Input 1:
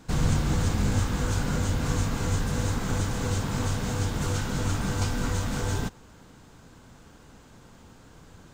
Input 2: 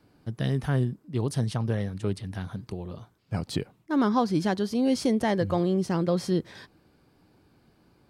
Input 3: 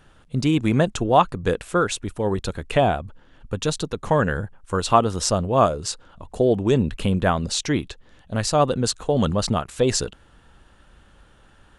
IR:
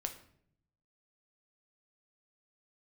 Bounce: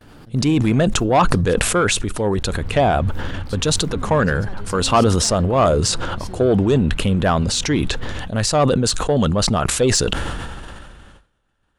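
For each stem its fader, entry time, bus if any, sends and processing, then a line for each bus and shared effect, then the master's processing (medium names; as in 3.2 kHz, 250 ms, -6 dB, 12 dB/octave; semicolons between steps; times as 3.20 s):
-11.5 dB, 2.40 s, no send, low-pass 3.3 kHz 24 dB/octave; peaking EQ 83 Hz +9.5 dB
-14.0 dB, 0.00 s, send -15.5 dB, gate with hold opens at -58 dBFS; swell ahead of each attack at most 30 dB/s
+3.0 dB, 0.00 s, send -23.5 dB, saturation -11 dBFS, distortion -16 dB; decay stretcher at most 24 dB/s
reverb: on, RT60 0.65 s, pre-delay 7 ms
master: gate with hold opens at -36 dBFS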